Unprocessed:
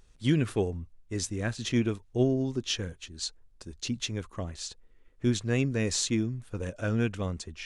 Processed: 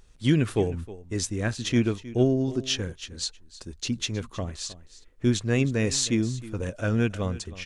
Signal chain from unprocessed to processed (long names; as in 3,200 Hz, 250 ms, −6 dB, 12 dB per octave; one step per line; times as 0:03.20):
single-tap delay 314 ms −17 dB
level +3.5 dB